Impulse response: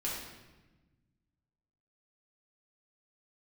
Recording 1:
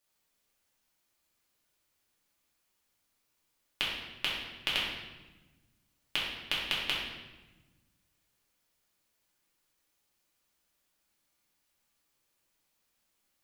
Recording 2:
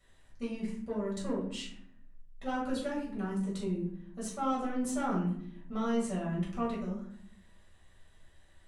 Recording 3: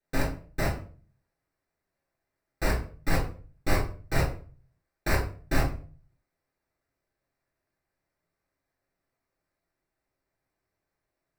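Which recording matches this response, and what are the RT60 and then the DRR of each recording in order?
1; 1.2, 0.65, 0.45 seconds; −6.5, −6.0, −6.5 decibels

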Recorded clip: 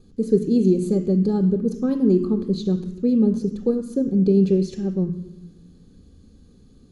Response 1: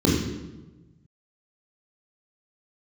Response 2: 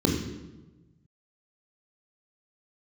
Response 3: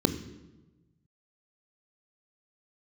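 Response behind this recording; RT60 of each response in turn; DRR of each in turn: 3; 1.1, 1.1, 1.1 seconds; −5.0, −0.5, 9.0 decibels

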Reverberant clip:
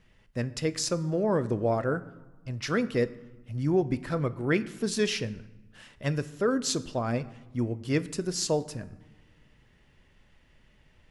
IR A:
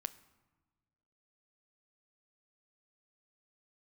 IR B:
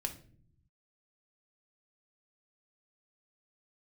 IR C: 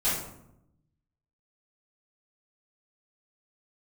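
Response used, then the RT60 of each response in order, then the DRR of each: A; 1.3, 0.55, 0.80 seconds; 13.0, 4.0, −13.0 decibels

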